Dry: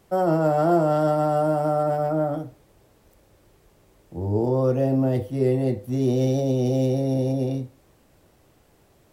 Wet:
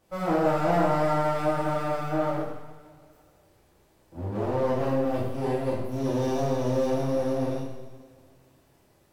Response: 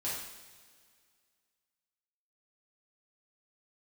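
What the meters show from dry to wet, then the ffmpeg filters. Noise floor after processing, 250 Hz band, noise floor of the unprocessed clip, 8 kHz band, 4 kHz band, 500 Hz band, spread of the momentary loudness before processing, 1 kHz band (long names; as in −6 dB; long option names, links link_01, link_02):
−62 dBFS, −5.0 dB, −59 dBFS, can't be measured, +0.5 dB, −4.0 dB, 8 LU, −2.0 dB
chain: -filter_complex "[0:a]aeval=exprs='max(val(0),0)':channel_layout=same[link_01];[1:a]atrim=start_sample=2205[link_02];[link_01][link_02]afir=irnorm=-1:irlink=0,volume=-3dB"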